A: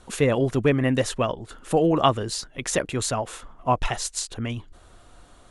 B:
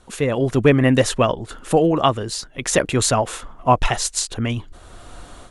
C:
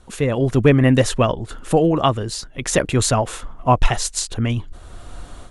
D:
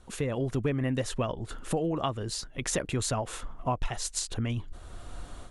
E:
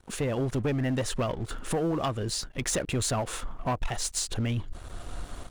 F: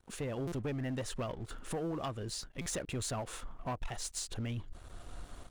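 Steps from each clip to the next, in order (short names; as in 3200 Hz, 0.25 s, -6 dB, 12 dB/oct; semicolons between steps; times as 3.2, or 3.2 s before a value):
AGC gain up to 13 dB; gain -1 dB
low shelf 160 Hz +7 dB; gain -1 dB
compressor 3:1, threshold -22 dBFS, peak gain reduction 11 dB; gain -6 dB
sample leveller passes 3; gain -7.5 dB
stuck buffer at 0.47/2.61, samples 256, times 8; gain -9 dB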